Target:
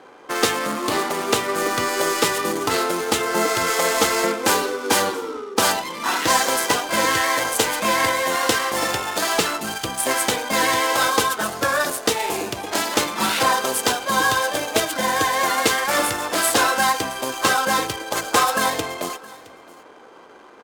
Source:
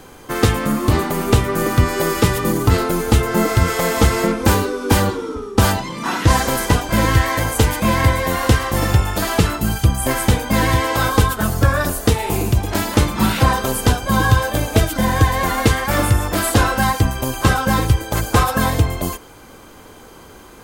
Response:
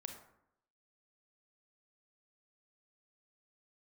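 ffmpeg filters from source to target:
-filter_complex "[0:a]highpass=400,adynamicsmooth=sensitivity=7.5:basefreq=1300,aemphasis=mode=production:type=cd,asplit=2[link_01][link_02];[link_02]aecho=0:1:667:0.0891[link_03];[link_01][link_03]amix=inputs=2:normalize=0"

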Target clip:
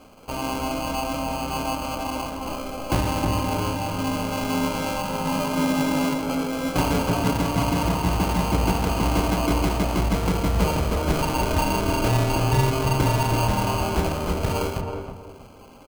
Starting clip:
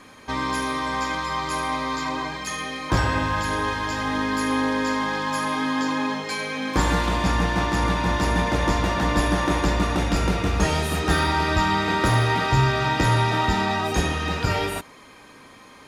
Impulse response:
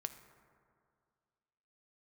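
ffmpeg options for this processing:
-filter_complex "[0:a]asettb=1/sr,asplit=3[link_01][link_02][link_03];[link_01]atrim=end=5.244[link_04];[link_02]atrim=start=5.24:end=7.85,asetpts=PTS-STARTPTS,afade=type=in:duration=0.004:curve=qsin,afade=type=out:start_time=2.606:duration=0.004:curve=qsin,aecho=1:1:7.2:0.74,atrim=end_sample=115101[link_05];[link_03]atrim=start=7.846[link_06];[link_04][link_05]acrossfade=duration=0.004:curve1=hsin:curve2=qsin[link_07];[link_07][link_06]acrossfade=duration=0.004:curve1=qsin:curve2=hsin,acrusher=samples=24:mix=1:aa=0.000001,asplit=2[link_08][link_09];[link_09]adelay=319,lowpass=frequency=970:poles=1,volume=-3dB,asplit=2[link_10][link_11];[link_11]adelay=319,lowpass=frequency=970:poles=1,volume=0.32,asplit=2[link_12][link_13];[link_13]adelay=319,lowpass=frequency=970:poles=1,volume=0.32,asplit=2[link_14][link_15];[link_15]adelay=319,lowpass=frequency=970:poles=1,volume=0.32[link_16];[link_08][link_10][link_12][link_14][link_16]amix=inputs=5:normalize=0,volume=-2dB"

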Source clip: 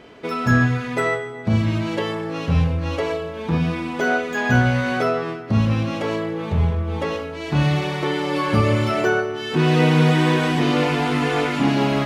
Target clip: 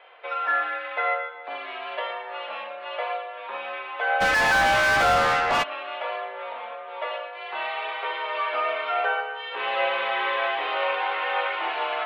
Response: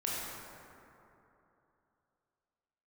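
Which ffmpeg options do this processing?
-filter_complex "[0:a]highpass=frequency=570:width_type=q:width=0.5412,highpass=frequency=570:width_type=q:width=1.307,lowpass=frequency=3500:width_type=q:width=0.5176,lowpass=frequency=3500:width_type=q:width=0.7071,lowpass=frequency=3500:width_type=q:width=1.932,afreqshift=58,asplit=2[link_01][link_02];[1:a]atrim=start_sample=2205,atrim=end_sample=6615,lowpass=4200[link_03];[link_02][link_03]afir=irnorm=-1:irlink=0,volume=-6.5dB[link_04];[link_01][link_04]amix=inputs=2:normalize=0,asplit=3[link_05][link_06][link_07];[link_05]afade=type=out:start_time=4.2:duration=0.02[link_08];[link_06]asplit=2[link_09][link_10];[link_10]highpass=frequency=720:poles=1,volume=31dB,asoftclip=type=tanh:threshold=-9dB[link_11];[link_09][link_11]amix=inputs=2:normalize=0,lowpass=frequency=2800:poles=1,volume=-6dB,afade=type=in:start_time=4.2:duration=0.02,afade=type=out:start_time=5.62:duration=0.02[link_12];[link_07]afade=type=in:start_time=5.62:duration=0.02[link_13];[link_08][link_12][link_13]amix=inputs=3:normalize=0,volume=-4.5dB"

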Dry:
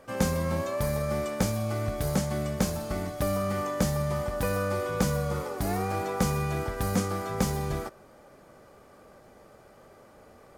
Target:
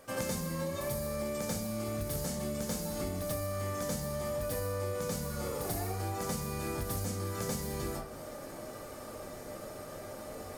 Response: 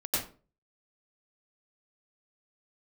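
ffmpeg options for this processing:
-filter_complex "[0:a]highshelf=frequency=4200:gain=11.5[link_01];[1:a]atrim=start_sample=2205[link_02];[link_01][link_02]afir=irnorm=-1:irlink=0,acompressor=threshold=-32dB:ratio=16"

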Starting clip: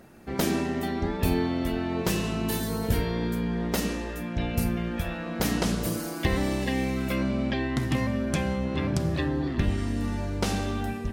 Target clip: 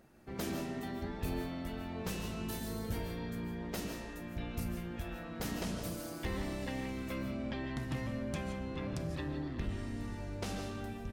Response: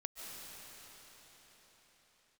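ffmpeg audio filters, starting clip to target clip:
-filter_complex "[0:a]asplit=2[link_01][link_02];[link_02]asetrate=22050,aresample=44100,atempo=2,volume=-9dB[link_03];[link_01][link_03]amix=inputs=2:normalize=0,asoftclip=type=tanh:threshold=-16dB[link_04];[1:a]atrim=start_sample=2205,afade=type=out:start_time=0.23:duration=0.01,atrim=end_sample=10584[link_05];[link_04][link_05]afir=irnorm=-1:irlink=0,volume=-6.5dB"

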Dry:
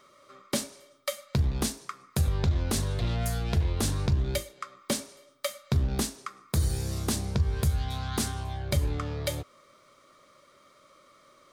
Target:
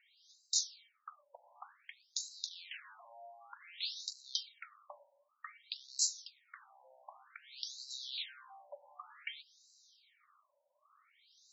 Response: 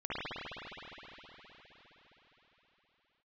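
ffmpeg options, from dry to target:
-af "aderivative,afftfilt=real='re*between(b*sr/1024,690*pow(5500/690,0.5+0.5*sin(2*PI*0.54*pts/sr))/1.41,690*pow(5500/690,0.5+0.5*sin(2*PI*0.54*pts/sr))*1.41)':imag='im*between(b*sr/1024,690*pow(5500/690,0.5+0.5*sin(2*PI*0.54*pts/sr))/1.41,690*pow(5500/690,0.5+0.5*sin(2*PI*0.54*pts/sr))*1.41)':win_size=1024:overlap=0.75,volume=7dB"

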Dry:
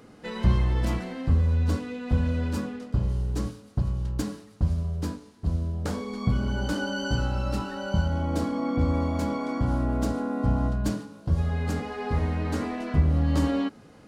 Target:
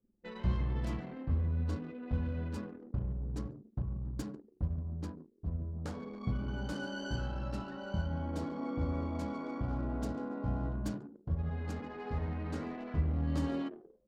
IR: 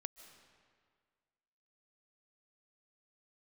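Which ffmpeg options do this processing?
-filter_complex "[0:a]asplit=5[link_01][link_02][link_03][link_04][link_05];[link_02]adelay=144,afreqshift=80,volume=-14dB[link_06];[link_03]adelay=288,afreqshift=160,volume=-20.9dB[link_07];[link_04]adelay=432,afreqshift=240,volume=-27.9dB[link_08];[link_05]adelay=576,afreqshift=320,volume=-34.8dB[link_09];[link_01][link_06][link_07][link_08][link_09]amix=inputs=5:normalize=0,flanger=delay=10:depth=5.4:regen=-78:speed=0.38:shape=sinusoidal,anlmdn=0.251,volume=-6dB"

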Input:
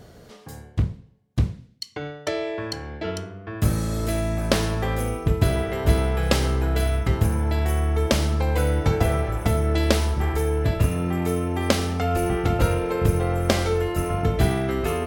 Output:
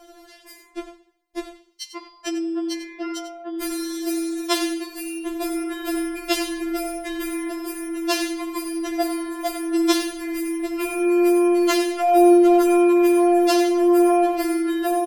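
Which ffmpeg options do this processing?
ffmpeg -i in.wav -af "aecho=1:1:94:0.282,afftfilt=real='re*4*eq(mod(b,16),0)':imag='im*4*eq(mod(b,16),0)':win_size=2048:overlap=0.75,volume=5dB" out.wav

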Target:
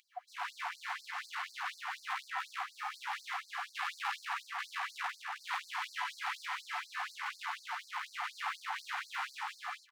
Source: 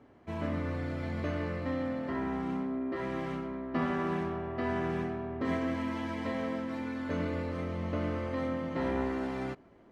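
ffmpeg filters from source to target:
ffmpeg -i in.wav -filter_complex "[0:a]equalizer=frequency=170:width_type=o:width=2.3:gain=8.5,aeval=exprs='val(0)+0.0158*sin(2*PI*720*n/s)':channel_layout=same,asplit=2[link_01][link_02];[link_02]aecho=0:1:208|303:0.237|0.631[link_03];[link_01][link_03]amix=inputs=2:normalize=0,flanger=delay=6.3:depth=7.8:regen=-40:speed=0.24:shape=triangular,areverse,acompressor=mode=upward:threshold=-37dB:ratio=2.5,areverse,asoftclip=type=hard:threshold=-34dB,afftfilt=real='re*gte(b*sr/1024,730*pow(4200/730,0.5+0.5*sin(2*PI*4.1*pts/sr)))':imag='im*gte(b*sr/1024,730*pow(4200/730,0.5+0.5*sin(2*PI*4.1*pts/sr)))':win_size=1024:overlap=0.75,volume=10dB" out.wav

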